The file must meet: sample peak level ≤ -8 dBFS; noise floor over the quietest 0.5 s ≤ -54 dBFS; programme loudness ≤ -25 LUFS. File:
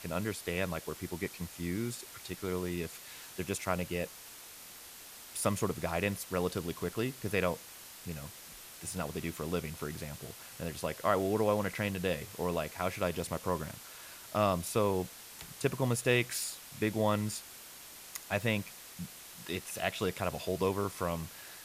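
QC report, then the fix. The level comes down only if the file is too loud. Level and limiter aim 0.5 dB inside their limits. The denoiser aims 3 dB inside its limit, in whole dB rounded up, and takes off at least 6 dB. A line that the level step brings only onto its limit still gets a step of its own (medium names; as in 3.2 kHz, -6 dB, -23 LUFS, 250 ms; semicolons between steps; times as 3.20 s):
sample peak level -14.0 dBFS: pass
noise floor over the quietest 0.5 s -50 dBFS: fail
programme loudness -35.0 LUFS: pass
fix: noise reduction 7 dB, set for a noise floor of -50 dBFS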